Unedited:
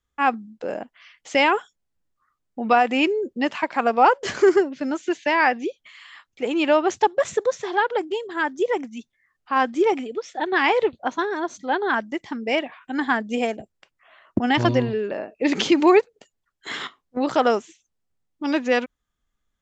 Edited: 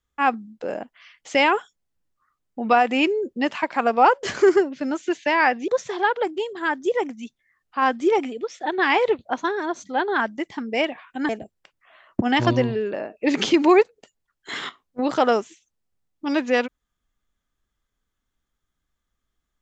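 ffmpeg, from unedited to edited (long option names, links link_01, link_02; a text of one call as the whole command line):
ffmpeg -i in.wav -filter_complex "[0:a]asplit=3[link_01][link_02][link_03];[link_01]atrim=end=5.682[link_04];[link_02]atrim=start=7.418:end=13.032[link_05];[link_03]atrim=start=13.468[link_06];[link_04][link_05]acrossfade=duration=0.004:curve1=hsin:curve2=hsin[link_07];[link_07][link_06]acrossfade=duration=0.004:curve1=hsin:curve2=hsin" out.wav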